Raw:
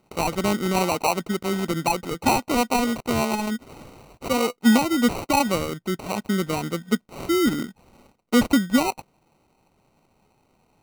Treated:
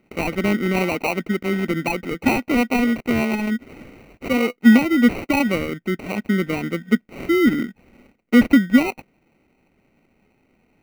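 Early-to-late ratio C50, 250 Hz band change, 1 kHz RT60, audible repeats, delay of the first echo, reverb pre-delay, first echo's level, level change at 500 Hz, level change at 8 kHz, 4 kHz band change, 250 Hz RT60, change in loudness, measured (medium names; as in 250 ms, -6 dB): no reverb, +5.0 dB, no reverb, no echo, no echo, no reverb, no echo, +1.5 dB, -8.0 dB, -2.5 dB, no reverb, +3.5 dB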